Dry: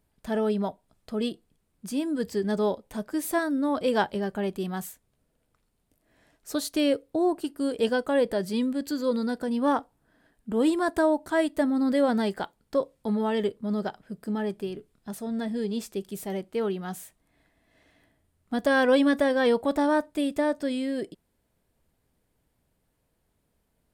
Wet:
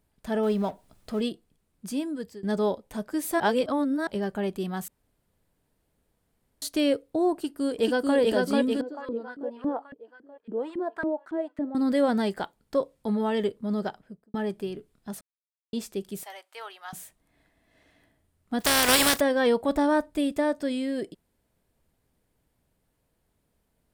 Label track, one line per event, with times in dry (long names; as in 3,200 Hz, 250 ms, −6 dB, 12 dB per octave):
0.430000	1.210000	mu-law and A-law mismatch coded by mu
1.910000	2.430000	fade out, to −20 dB
3.400000	4.070000	reverse
4.880000	6.620000	fill with room tone
7.340000	8.170000	delay throw 440 ms, feedback 60%, level −1 dB
8.810000	11.750000	auto-filter band-pass saw up 3.6 Hz 250–1,900 Hz
13.890000	14.340000	fade out and dull
15.210000	15.730000	silence
16.230000	16.930000	high-pass filter 780 Hz 24 dB per octave
18.600000	19.190000	compressing power law on the bin magnitudes exponent 0.31
19.690000	20.320000	low-shelf EQ 80 Hz +12 dB